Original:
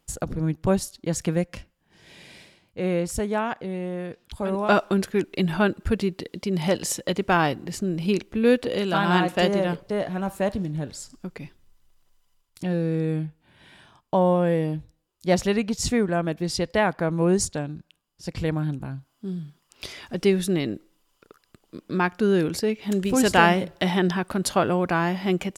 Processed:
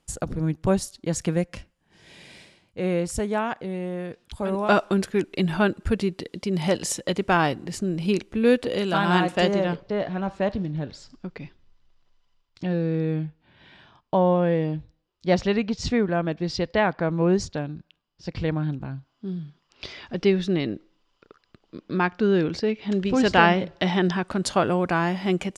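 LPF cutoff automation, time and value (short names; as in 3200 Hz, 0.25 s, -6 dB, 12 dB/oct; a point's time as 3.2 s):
LPF 24 dB/oct
9.2 s 11000 Hz
9.88 s 5200 Hz
23.57 s 5200 Hz
24.69 s 9900 Hz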